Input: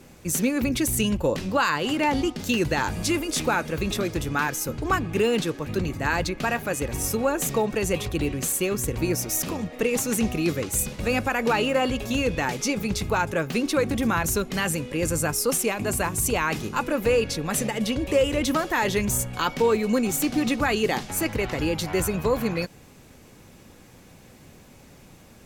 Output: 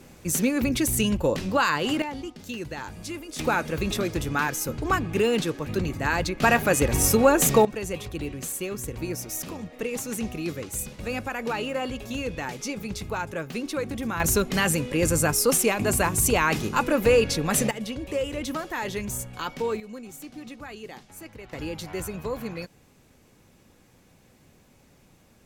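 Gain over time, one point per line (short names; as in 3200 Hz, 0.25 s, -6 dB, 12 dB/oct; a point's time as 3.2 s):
0 dB
from 2.02 s -11 dB
from 3.39 s -0.5 dB
from 6.42 s +6 dB
from 7.65 s -6.5 dB
from 14.2 s +2.5 dB
from 17.71 s -7 dB
from 19.8 s -17 dB
from 21.53 s -8 dB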